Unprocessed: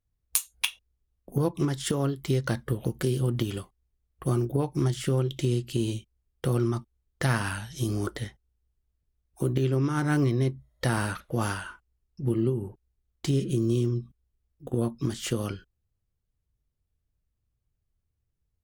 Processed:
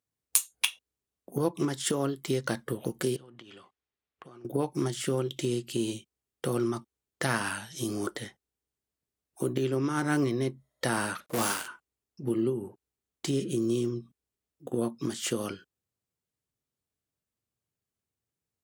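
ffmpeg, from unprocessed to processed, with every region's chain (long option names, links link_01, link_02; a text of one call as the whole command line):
ffmpeg -i in.wav -filter_complex "[0:a]asettb=1/sr,asplit=3[link_01][link_02][link_03];[link_01]atrim=end=3.164[link_04];[link_02]atrim=start=3.16:end=4.45,asetpts=PTS-STARTPTS,afade=type=in:duration=0.004:curve=qsin,afade=type=out:start_time=1.286:duration=0.004:curve=qsin,lowpass=3400,tiltshelf=frequency=640:gain=-5.5,acompressor=threshold=-43dB:ratio=16:attack=3.2:release=140:knee=1:detection=peak[link_05];[link_03]atrim=start=4.446[link_06];[link_04][link_05]acrossfade=duration=0.004:curve1=hsin:curve2=qsin[link_07];[link_07][link_06]acrossfade=duration=0.004:curve1=qsin:curve2=hsin,asettb=1/sr,asplit=3[link_08][link_09][link_10];[link_08]atrim=end=11.264[link_11];[link_09]atrim=start=11.26:end=11.68,asetpts=PTS-STARTPTS,afade=type=in:duration=0.004:curve=qsin,afade=type=out:start_time=0.416:duration=0.004:curve=qsin,bass=frequency=250:gain=-1,treble=frequency=4000:gain=5,acrusher=bits=6:dc=4:mix=0:aa=0.000001,asplit=2[link_12][link_13];[link_13]adelay=35,volume=-9dB[link_14];[link_12][link_14]amix=inputs=2:normalize=0,atrim=end_sample=18522[link_15];[link_10]atrim=start=11.676[link_16];[link_11][link_15]acrossfade=duration=0.004:curve1=hsin:curve2=qsin[link_17];[link_17][link_16]acrossfade=duration=0.004:curve1=qsin:curve2=hsin,highpass=210,equalizer=frequency=8000:width_type=o:width=0.61:gain=3.5" out.wav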